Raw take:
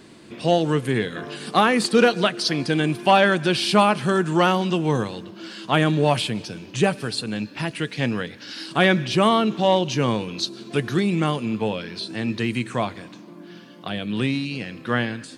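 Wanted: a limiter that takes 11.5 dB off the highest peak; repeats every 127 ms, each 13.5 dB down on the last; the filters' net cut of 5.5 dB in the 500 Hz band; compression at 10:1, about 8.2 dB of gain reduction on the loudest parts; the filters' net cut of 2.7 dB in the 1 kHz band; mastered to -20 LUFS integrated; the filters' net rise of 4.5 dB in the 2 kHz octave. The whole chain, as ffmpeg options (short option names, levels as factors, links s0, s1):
-af "equalizer=f=500:t=o:g=-6.5,equalizer=f=1000:t=o:g=-3.5,equalizer=f=2000:t=o:g=7.5,acompressor=threshold=0.1:ratio=10,alimiter=limit=0.1:level=0:latency=1,aecho=1:1:127|254:0.211|0.0444,volume=3.16"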